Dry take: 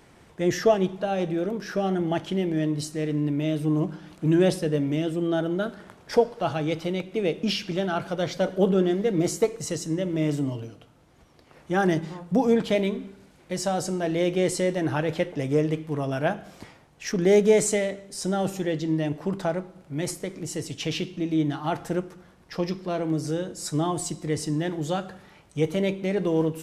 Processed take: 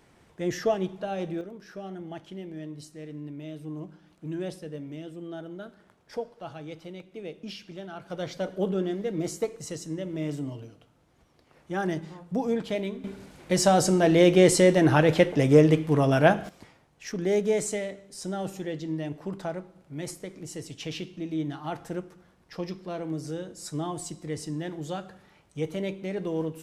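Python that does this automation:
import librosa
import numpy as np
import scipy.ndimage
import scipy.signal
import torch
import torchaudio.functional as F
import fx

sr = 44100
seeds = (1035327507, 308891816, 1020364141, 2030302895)

y = fx.gain(x, sr, db=fx.steps((0.0, -5.5), (1.41, -13.5), (8.1, -6.5), (13.04, 6.0), (16.49, -6.5)))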